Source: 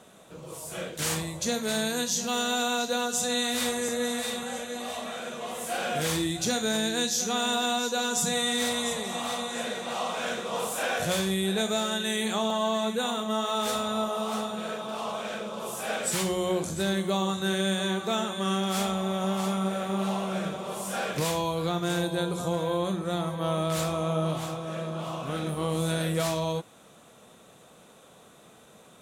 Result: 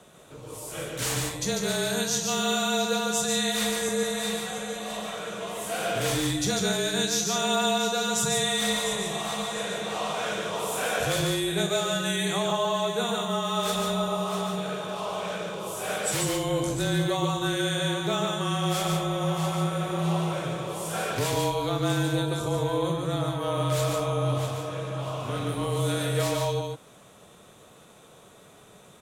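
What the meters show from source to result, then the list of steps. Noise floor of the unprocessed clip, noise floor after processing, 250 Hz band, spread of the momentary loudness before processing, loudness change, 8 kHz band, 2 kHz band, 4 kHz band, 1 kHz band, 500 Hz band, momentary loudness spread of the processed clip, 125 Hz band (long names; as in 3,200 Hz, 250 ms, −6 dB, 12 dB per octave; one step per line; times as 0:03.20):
−54 dBFS, −53 dBFS, 0.0 dB, 8 LU, +1.5 dB, +1.5 dB, +1.0 dB, +1.5 dB, +1.0 dB, +1.5 dB, 8 LU, +4.5 dB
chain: frequency shifter −29 Hz
on a send: single-tap delay 145 ms −3.5 dB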